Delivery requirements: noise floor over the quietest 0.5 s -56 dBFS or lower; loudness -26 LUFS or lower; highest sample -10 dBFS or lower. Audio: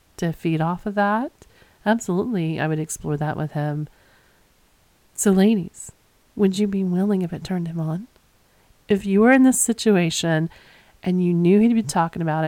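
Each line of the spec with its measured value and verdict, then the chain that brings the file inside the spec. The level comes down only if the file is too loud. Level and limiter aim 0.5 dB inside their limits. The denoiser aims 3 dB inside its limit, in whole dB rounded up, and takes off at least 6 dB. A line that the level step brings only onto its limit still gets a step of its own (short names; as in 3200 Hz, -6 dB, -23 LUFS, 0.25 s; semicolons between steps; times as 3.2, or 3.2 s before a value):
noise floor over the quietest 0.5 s -59 dBFS: OK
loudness -21.0 LUFS: fail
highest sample -3.5 dBFS: fail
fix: gain -5.5 dB; limiter -10.5 dBFS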